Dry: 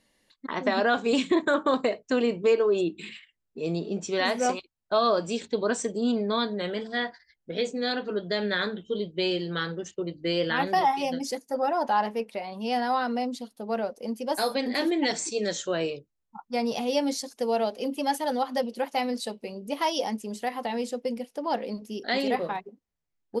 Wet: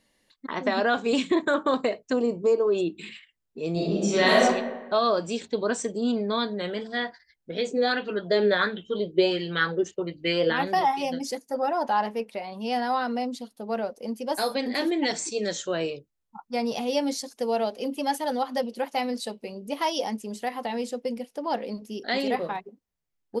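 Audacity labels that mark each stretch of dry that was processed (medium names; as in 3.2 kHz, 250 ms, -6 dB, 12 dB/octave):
2.130000	2.670000	high-order bell 2.4 kHz -13.5 dB
3.720000	4.410000	reverb throw, RT60 1.2 s, DRR -6.5 dB
7.710000	10.530000	sweeping bell 1.4 Hz 360–2900 Hz +12 dB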